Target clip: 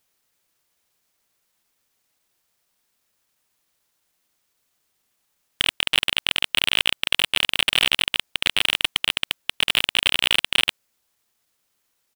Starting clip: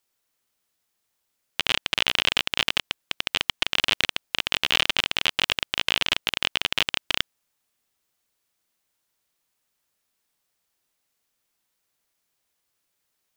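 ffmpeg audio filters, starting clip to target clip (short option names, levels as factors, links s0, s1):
-af "areverse,atempo=1.1,volume=3.16,asoftclip=hard,volume=0.316,volume=1.78"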